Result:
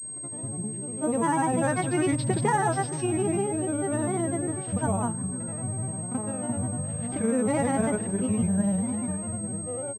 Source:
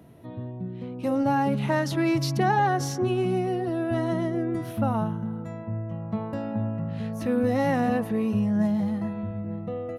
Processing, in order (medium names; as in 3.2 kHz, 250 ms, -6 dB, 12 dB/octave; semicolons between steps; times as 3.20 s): echo from a far wall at 110 m, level -21 dB; granulator, pitch spread up and down by 3 st; class-D stage that switches slowly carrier 8.4 kHz